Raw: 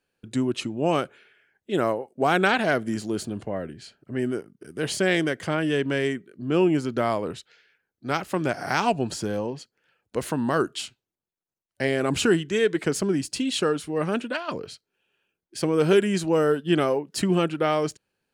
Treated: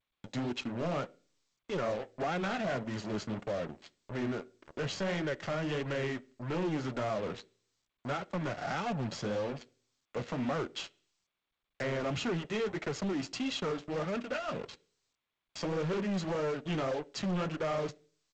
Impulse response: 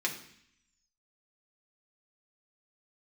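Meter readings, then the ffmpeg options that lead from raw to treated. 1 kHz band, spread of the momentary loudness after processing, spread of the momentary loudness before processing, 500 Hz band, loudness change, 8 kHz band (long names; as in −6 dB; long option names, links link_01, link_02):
−10.0 dB, 8 LU, 12 LU, −10.5 dB, −10.5 dB, −13.5 dB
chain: -filter_complex "[0:a]highpass=120,aecho=1:1:1.5:0.52,acrossover=split=300[link_01][link_02];[link_02]acompressor=threshold=-31dB:ratio=2.5[link_03];[link_01][link_03]amix=inputs=2:normalize=0,aresample=16000,acrusher=bits=5:mix=0:aa=0.5,aresample=44100,adynamicsmooth=sensitivity=4:basefreq=5300,asoftclip=type=tanh:threshold=-14dB,flanger=delay=1.9:depth=8.9:regen=-34:speed=1.7:shape=sinusoidal,asoftclip=type=hard:threshold=-30.5dB,asplit=2[link_04][link_05];[1:a]atrim=start_sample=2205,asetrate=70560,aresample=44100,lowpass=2800[link_06];[link_05][link_06]afir=irnorm=-1:irlink=0,volume=-12.5dB[link_07];[link_04][link_07]amix=inputs=2:normalize=0" -ar 16000 -c:a g722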